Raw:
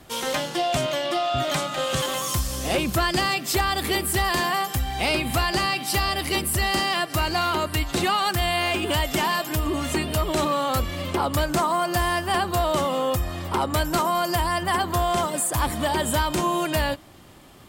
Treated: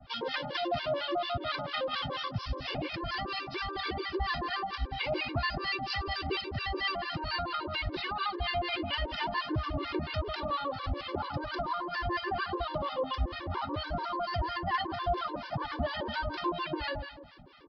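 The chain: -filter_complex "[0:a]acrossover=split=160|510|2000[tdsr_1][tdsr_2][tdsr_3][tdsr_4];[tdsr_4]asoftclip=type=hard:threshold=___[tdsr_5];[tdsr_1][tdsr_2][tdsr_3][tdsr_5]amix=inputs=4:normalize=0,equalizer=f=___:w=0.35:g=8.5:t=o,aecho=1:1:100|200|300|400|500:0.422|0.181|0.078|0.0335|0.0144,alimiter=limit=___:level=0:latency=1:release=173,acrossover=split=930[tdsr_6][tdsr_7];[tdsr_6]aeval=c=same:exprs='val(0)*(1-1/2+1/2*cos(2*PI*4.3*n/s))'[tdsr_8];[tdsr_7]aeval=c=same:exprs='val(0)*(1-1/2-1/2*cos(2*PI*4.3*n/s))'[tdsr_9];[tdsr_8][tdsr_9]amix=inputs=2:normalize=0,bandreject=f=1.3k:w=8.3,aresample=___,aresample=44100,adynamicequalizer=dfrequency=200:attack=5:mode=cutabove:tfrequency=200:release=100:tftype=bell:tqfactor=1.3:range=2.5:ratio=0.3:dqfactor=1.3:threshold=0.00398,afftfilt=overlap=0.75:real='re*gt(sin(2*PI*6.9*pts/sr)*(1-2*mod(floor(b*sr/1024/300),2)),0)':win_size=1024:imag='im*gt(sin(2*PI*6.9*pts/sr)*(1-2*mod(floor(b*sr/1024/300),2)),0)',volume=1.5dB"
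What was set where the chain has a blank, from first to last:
-25dB, 1.3k, -16dB, 11025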